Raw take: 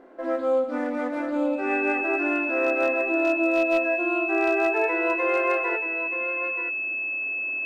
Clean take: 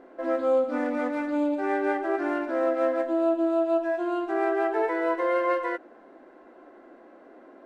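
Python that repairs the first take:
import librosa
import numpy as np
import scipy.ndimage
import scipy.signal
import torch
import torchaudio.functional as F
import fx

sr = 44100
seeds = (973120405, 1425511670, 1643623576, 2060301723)

y = fx.fix_declip(x, sr, threshold_db=-14.5)
y = fx.notch(y, sr, hz=2600.0, q=30.0)
y = fx.fix_echo_inverse(y, sr, delay_ms=930, level_db=-9.0)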